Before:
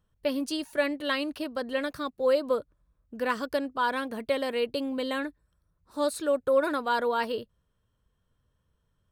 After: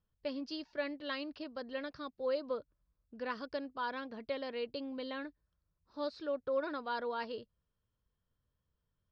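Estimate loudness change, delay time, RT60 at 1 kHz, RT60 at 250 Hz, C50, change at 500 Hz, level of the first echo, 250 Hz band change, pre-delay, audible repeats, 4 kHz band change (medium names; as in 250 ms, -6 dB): -10.5 dB, no echo, no reverb, no reverb, no reverb, -10.5 dB, no echo, -10.5 dB, no reverb, no echo, -10.0 dB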